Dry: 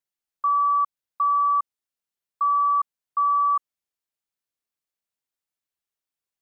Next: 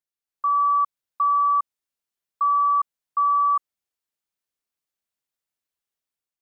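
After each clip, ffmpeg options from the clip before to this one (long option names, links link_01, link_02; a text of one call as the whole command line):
ffmpeg -i in.wav -af "dynaudnorm=framelen=150:gausssize=5:maxgain=6dB,volume=-5dB" out.wav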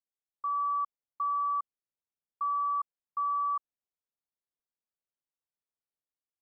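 ffmpeg -i in.wav -af "lowpass=1100,volume=-7dB" out.wav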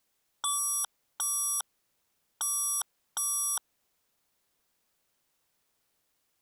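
ffmpeg -i in.wav -af "aeval=exprs='0.0473*sin(PI/2*6.31*val(0)/0.0473)':channel_layout=same" out.wav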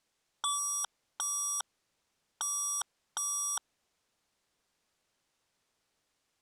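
ffmpeg -i in.wav -af "lowpass=8000" out.wav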